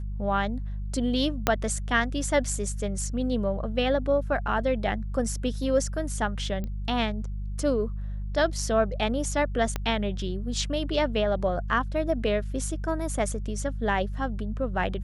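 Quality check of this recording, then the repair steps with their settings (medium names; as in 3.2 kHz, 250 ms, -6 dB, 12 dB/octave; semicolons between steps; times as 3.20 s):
hum 50 Hz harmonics 4 -32 dBFS
1.47 s: pop -6 dBFS
6.64 s: pop -22 dBFS
9.76 s: pop -14 dBFS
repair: de-click; de-hum 50 Hz, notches 4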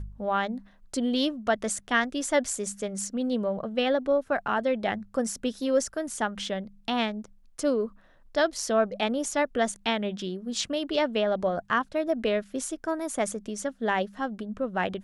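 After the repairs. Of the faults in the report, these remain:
1.47 s: pop
9.76 s: pop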